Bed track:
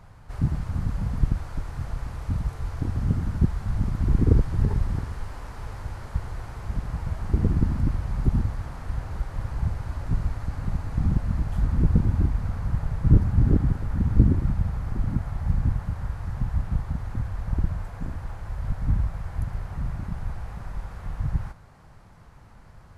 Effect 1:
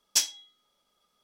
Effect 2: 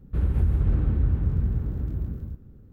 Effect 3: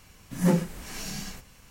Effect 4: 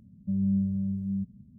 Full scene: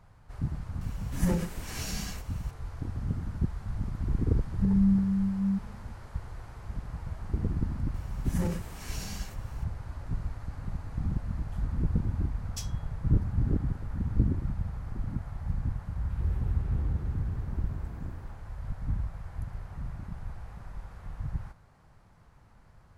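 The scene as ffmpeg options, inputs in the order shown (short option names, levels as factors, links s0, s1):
-filter_complex "[3:a]asplit=2[s0][s1];[0:a]volume=0.398[s2];[s0]acompressor=threshold=0.0562:ratio=4:attack=15:release=92:knee=1:detection=rms[s3];[4:a]aecho=1:1:4.4:0.78[s4];[s1]alimiter=limit=0.106:level=0:latency=1:release=20[s5];[2:a]acrossover=split=240|860[s6][s7][s8];[s8]adelay=140[s9];[s7]adelay=240[s10];[s6][s10][s9]amix=inputs=3:normalize=0[s11];[s3]atrim=end=1.7,asetpts=PTS-STARTPTS,volume=0.944,afade=t=in:d=0.004:c=hsin,afade=t=out:st=1.696:d=0.004:c=hsin,adelay=810[s12];[s4]atrim=end=1.58,asetpts=PTS-STARTPTS,volume=0.891,afade=t=in:d=0.004:c=hsin,afade=t=out:st=1.576:d=0.004:c=hsin,adelay=4340[s13];[s5]atrim=end=1.7,asetpts=PTS-STARTPTS,volume=0.596,afade=t=in:d=0.004:c=hsin,afade=t=out:st=1.696:d=0.004:c=hsin,adelay=350154S[s14];[1:a]atrim=end=1.23,asetpts=PTS-STARTPTS,volume=0.141,afade=t=in:d=0.004:c=hsin,afade=t=out:st=1.226:d=0.004:c=hsin,adelay=12410[s15];[s11]atrim=end=2.72,asetpts=PTS-STARTPTS,volume=0.376,afade=t=in:d=0.004:c=hsin,afade=t=out:st=2.716:d=0.004:c=hsin,adelay=15820[s16];[s2][s12][s13][s14][s15][s16]amix=inputs=6:normalize=0"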